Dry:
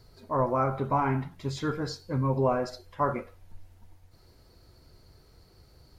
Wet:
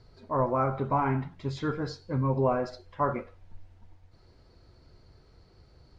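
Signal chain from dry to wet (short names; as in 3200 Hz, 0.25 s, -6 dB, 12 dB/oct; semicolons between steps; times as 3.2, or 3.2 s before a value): air absorption 110 m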